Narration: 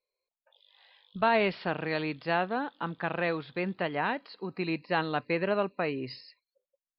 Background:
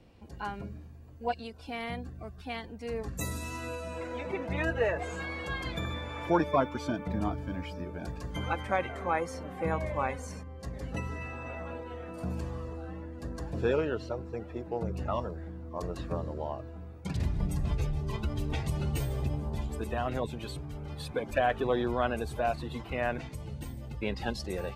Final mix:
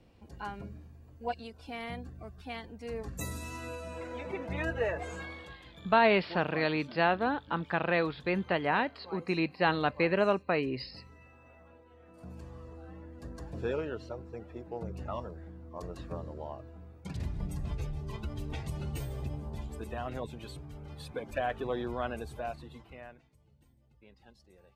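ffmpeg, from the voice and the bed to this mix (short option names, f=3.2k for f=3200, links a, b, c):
-filter_complex "[0:a]adelay=4700,volume=1.5dB[a];[1:a]volume=9dB,afade=t=out:st=5.14:d=0.43:silence=0.188365,afade=t=in:st=11.92:d=1.22:silence=0.251189,afade=t=out:st=22.16:d=1.06:silence=0.1[b];[a][b]amix=inputs=2:normalize=0"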